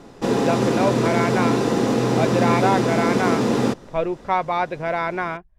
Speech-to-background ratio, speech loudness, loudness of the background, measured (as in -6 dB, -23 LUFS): -4.0 dB, -24.5 LUFS, -20.5 LUFS